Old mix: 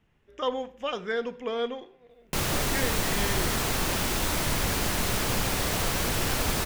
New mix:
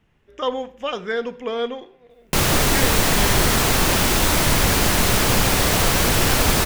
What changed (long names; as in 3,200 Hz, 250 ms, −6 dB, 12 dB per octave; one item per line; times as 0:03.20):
speech +5.0 dB
background +9.5 dB